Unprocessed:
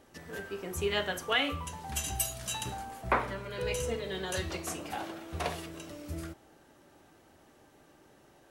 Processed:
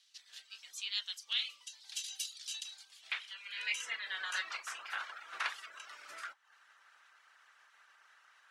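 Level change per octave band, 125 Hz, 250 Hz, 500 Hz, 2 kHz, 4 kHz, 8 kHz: below −40 dB, below −35 dB, −28.5 dB, −2.5 dB, −1.0 dB, −7.0 dB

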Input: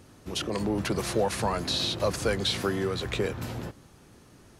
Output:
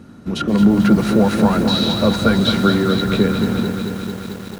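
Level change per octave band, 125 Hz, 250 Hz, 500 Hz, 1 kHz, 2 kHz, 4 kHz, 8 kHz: +13.5, +19.0, +9.0, +10.5, +9.5, +8.0, +2.0 decibels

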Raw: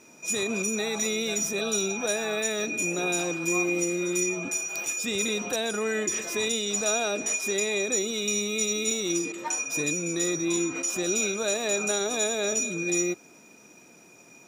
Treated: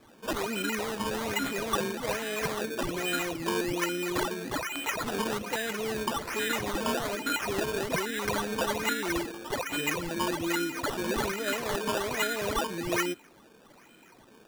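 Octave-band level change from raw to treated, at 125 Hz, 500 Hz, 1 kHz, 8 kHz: 0.0, −3.0, +5.5, −12.5 decibels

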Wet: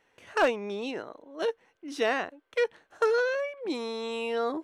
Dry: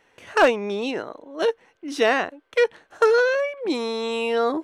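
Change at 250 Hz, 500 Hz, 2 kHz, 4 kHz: −7.5, −7.5, −7.5, −7.5 decibels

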